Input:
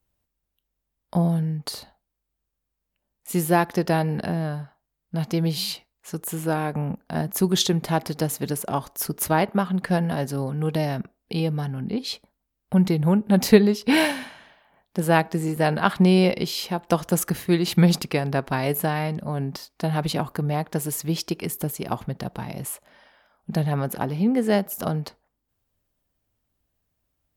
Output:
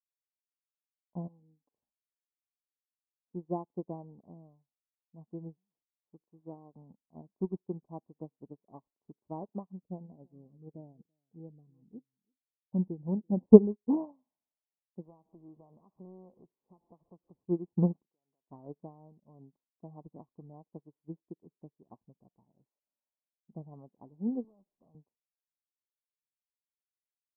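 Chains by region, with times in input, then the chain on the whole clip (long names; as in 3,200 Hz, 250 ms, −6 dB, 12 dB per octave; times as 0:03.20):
0:01.27–0:01.72: comb filter 3.8 ms, depth 96% + downward compressor 4 to 1, threshold −26 dBFS
0:09.66–0:13.46: phaser swept by the level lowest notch 220 Hz, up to 1,500 Hz, full sweep at −20 dBFS + single-tap delay 334 ms −15.5 dB
0:15.05–0:17.45: converter with a step at zero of −28 dBFS + downward compressor 2.5 to 1, threshold −26 dBFS + highs frequency-modulated by the lows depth 0.64 ms
0:18.03–0:18.49: high-pass filter 630 Hz 6 dB per octave + downward compressor 4 to 1, threshold −38 dBFS
0:24.44–0:24.95: tube saturation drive 28 dB, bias 0.4 + multiband upward and downward compressor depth 70%
whole clip: Butterworth low-pass 1,100 Hz 96 dB per octave; parametric band 280 Hz +7 dB 1.3 octaves; expander for the loud parts 2.5 to 1, over −34 dBFS; level −3.5 dB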